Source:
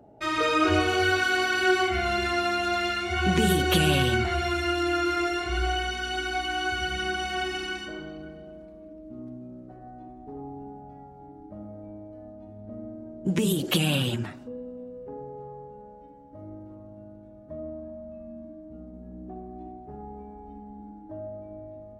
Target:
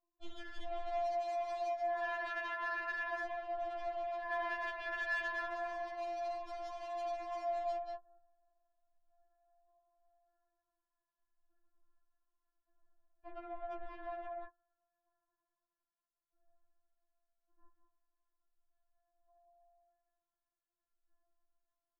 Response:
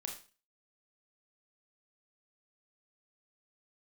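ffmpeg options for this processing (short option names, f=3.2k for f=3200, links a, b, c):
-af "agate=range=-32dB:threshold=-32dB:ratio=16:detection=peak,dynaudnorm=f=300:g=31:m=4.5dB,acrusher=bits=3:mode=log:mix=0:aa=0.000001,afftfilt=real='re*between(b*sr/4096,170,1500)':imag='im*between(b*sr/4096,170,1500)':win_size=4096:overlap=0.75,aeval=exprs='val(0)*sin(2*PI*320*n/s)':c=same,aecho=1:1:185:0.422,acompressor=threshold=-34dB:ratio=10,asoftclip=type=tanh:threshold=-38.5dB,afftfilt=real='re*4*eq(mod(b,16),0)':imag='im*4*eq(mod(b,16),0)':win_size=2048:overlap=0.75,volume=2dB"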